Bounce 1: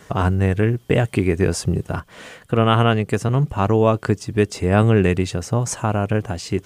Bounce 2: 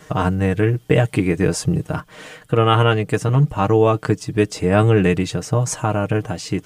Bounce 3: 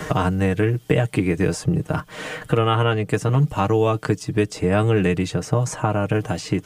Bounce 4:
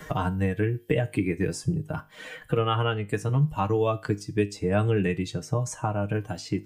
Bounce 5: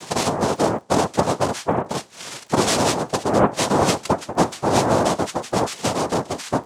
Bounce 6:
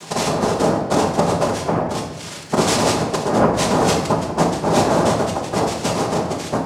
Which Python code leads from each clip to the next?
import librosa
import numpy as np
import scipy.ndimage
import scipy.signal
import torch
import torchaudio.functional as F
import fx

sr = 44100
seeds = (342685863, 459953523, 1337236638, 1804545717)

y1 = x + 0.6 * np.pad(x, (int(6.5 * sr / 1000.0), 0))[:len(x)]
y2 = fx.band_squash(y1, sr, depth_pct=70)
y2 = y2 * 10.0 ** (-3.0 / 20.0)
y3 = fx.bin_expand(y2, sr, power=1.5)
y3 = fx.comb_fb(y3, sr, f0_hz=51.0, decay_s=0.32, harmonics='all', damping=0.0, mix_pct=50)
y4 = fx.noise_vocoder(y3, sr, seeds[0], bands=2)
y4 = fx.dmg_crackle(y4, sr, seeds[1], per_s=15.0, level_db=-44.0)
y4 = y4 * 10.0 ** (6.0 / 20.0)
y5 = fx.room_shoebox(y4, sr, seeds[2], volume_m3=590.0, walls='mixed', distance_m=1.3)
y5 = y5 * 10.0 ** (-1.0 / 20.0)